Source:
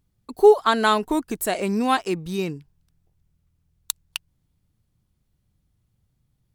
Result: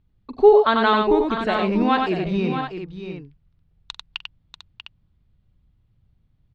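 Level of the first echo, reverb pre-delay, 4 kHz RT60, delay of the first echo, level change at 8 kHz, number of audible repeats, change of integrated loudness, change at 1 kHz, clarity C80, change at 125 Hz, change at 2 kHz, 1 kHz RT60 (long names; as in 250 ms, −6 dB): −15.5 dB, no reverb audible, no reverb audible, 44 ms, below −20 dB, 4, +2.5 dB, +2.5 dB, no reverb audible, +4.5 dB, +2.0 dB, no reverb audible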